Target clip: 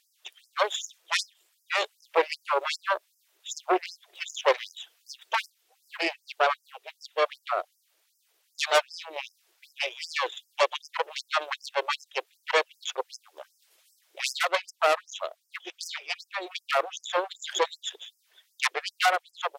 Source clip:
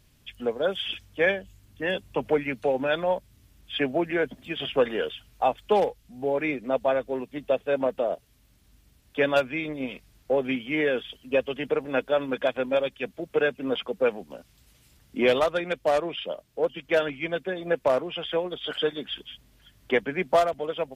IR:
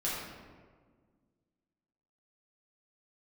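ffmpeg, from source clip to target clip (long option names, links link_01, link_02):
-af "asetrate=47187,aresample=44100,aeval=exprs='0.335*(cos(1*acos(clip(val(0)/0.335,-1,1)))-cos(1*PI/2))+0.00188*(cos(2*acos(clip(val(0)/0.335,-1,1)))-cos(2*PI/2))+0.015*(cos(3*acos(clip(val(0)/0.335,-1,1)))-cos(3*PI/2))+0.106*(cos(6*acos(clip(val(0)/0.335,-1,1)))-cos(6*PI/2))':channel_layout=same,afftfilt=real='re*gte(b*sr/1024,310*pow(5000/310,0.5+0.5*sin(2*PI*2.6*pts/sr)))':imag='im*gte(b*sr/1024,310*pow(5000/310,0.5+0.5*sin(2*PI*2.6*pts/sr)))':win_size=1024:overlap=0.75"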